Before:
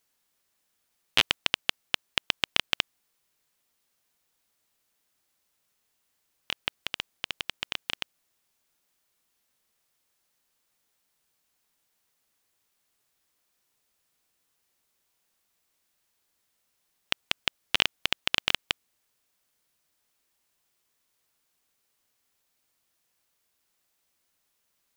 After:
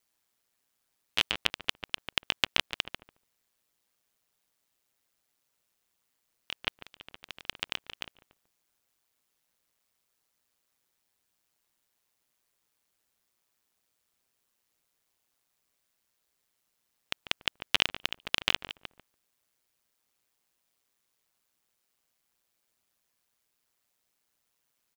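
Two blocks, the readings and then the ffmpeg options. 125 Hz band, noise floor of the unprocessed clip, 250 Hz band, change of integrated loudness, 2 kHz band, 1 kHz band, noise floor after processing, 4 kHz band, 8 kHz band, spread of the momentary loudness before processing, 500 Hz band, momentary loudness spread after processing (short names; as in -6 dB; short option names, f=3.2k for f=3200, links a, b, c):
-2.0 dB, -76 dBFS, -2.0 dB, -2.0 dB, -2.5 dB, -2.5 dB, -79 dBFS, -3.0 dB, -3.0 dB, 10 LU, -2.0 dB, 17 LU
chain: -filter_complex "[0:a]asplit=2[a][b];[b]adelay=144,lowpass=f=1.2k:p=1,volume=-7dB,asplit=2[c][d];[d]adelay=144,lowpass=f=1.2k:p=1,volume=0.26,asplit=2[e][f];[f]adelay=144,lowpass=f=1.2k:p=1,volume=0.26[g];[a][c][e][g]amix=inputs=4:normalize=0,aeval=exprs='val(0)*sin(2*PI*60*n/s)':c=same"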